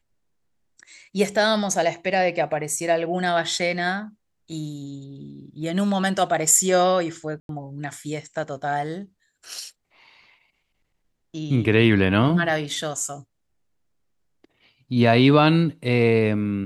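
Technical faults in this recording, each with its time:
7.40–7.49 s: dropout 92 ms

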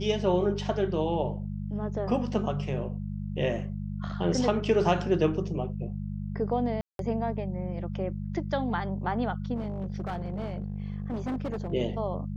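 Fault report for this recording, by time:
hum 50 Hz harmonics 4 -34 dBFS
6.81–6.99 s: dropout 182 ms
9.56–11.73 s: clipped -28 dBFS

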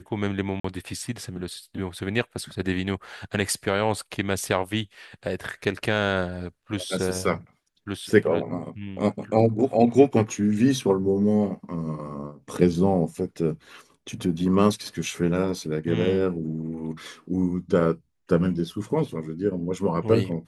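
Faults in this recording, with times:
0.60–0.64 s: dropout 44 ms

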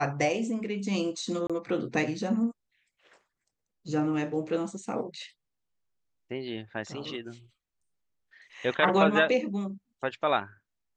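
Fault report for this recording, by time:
1.47–1.50 s: dropout 26 ms

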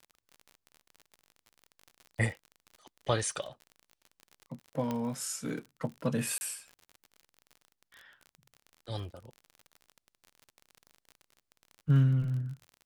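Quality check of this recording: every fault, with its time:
crackle 41 per s -40 dBFS
4.91 s: pop -20 dBFS
6.38–6.41 s: dropout 30 ms

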